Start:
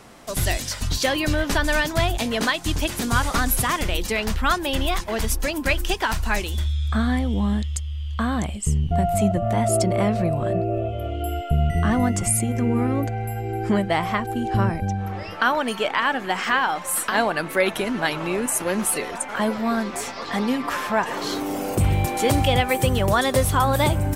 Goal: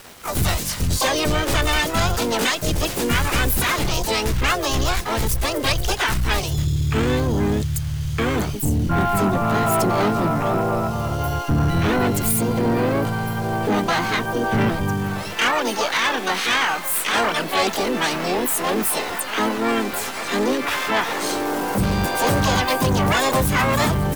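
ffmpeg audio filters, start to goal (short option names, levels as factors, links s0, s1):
-filter_complex "[0:a]acrusher=bits=6:mix=0:aa=0.000001,asplit=4[s0][s1][s2][s3];[s1]asetrate=52444,aresample=44100,atempo=0.840896,volume=0.501[s4];[s2]asetrate=66075,aresample=44100,atempo=0.66742,volume=0.708[s5];[s3]asetrate=88200,aresample=44100,atempo=0.5,volume=1[s6];[s0][s4][s5][s6]amix=inputs=4:normalize=0,asoftclip=type=tanh:threshold=0.211"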